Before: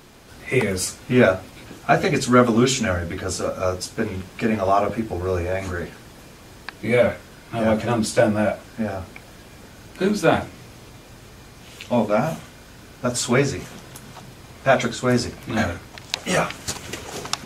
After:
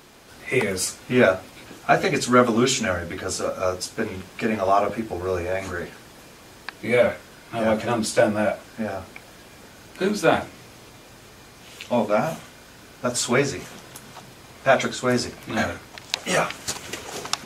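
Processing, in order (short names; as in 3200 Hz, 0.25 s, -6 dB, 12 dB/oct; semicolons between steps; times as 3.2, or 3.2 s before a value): low shelf 190 Hz -8.5 dB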